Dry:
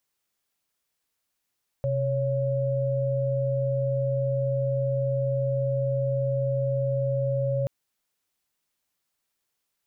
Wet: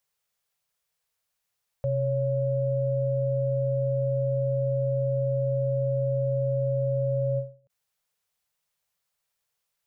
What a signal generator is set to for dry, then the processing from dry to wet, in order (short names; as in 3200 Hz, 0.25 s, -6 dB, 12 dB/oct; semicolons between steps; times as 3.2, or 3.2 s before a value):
chord C3/C#5 sine, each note -25.5 dBFS 5.83 s
Chebyshev band-stop 180–450 Hz, order 2; ending taper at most 170 dB/s